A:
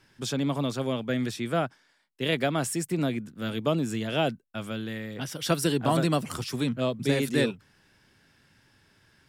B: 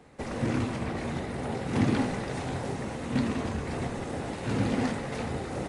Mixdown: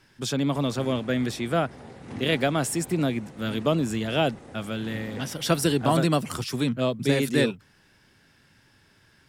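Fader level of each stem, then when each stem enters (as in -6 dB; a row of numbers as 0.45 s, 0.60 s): +2.5 dB, -11.5 dB; 0.00 s, 0.35 s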